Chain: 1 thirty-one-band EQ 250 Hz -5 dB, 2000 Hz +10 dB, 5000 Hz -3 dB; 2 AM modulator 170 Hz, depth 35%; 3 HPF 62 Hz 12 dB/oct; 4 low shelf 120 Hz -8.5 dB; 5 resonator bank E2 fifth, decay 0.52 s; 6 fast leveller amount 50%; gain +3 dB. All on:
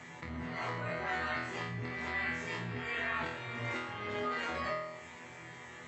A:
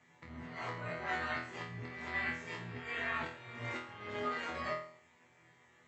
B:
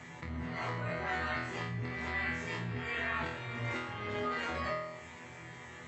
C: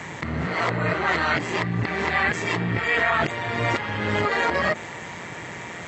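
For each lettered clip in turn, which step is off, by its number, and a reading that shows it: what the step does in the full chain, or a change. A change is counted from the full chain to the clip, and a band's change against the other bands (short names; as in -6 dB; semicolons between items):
6, crest factor change +2.0 dB; 4, 125 Hz band +3.5 dB; 5, momentary loudness spread change +1 LU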